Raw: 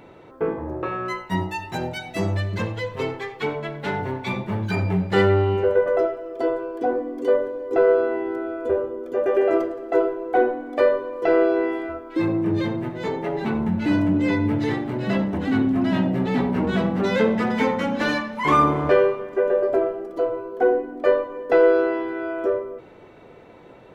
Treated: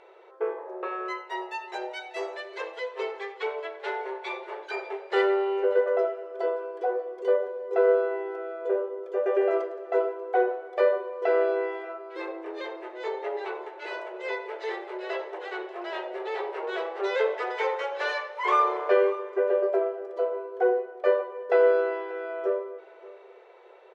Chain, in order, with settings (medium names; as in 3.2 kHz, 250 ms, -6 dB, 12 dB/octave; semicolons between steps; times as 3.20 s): brick-wall FIR high-pass 350 Hz; distance through air 77 m; delay 588 ms -20 dB; trim -4 dB